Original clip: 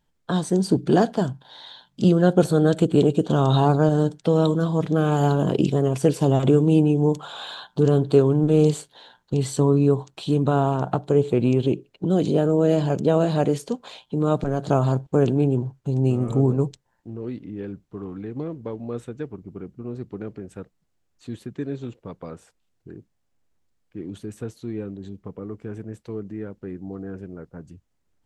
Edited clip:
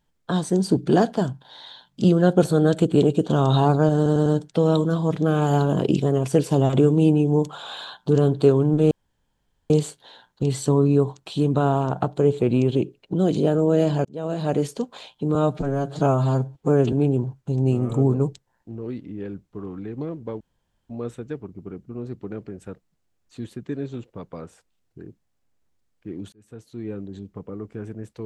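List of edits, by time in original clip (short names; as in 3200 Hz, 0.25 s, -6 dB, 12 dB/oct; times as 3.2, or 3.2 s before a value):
3.96 stutter 0.10 s, 4 plays
8.61 insert room tone 0.79 s
12.96–13.54 fade in
14.26–15.31 stretch 1.5×
18.79 insert room tone 0.49 s
24.22–24.86 fade in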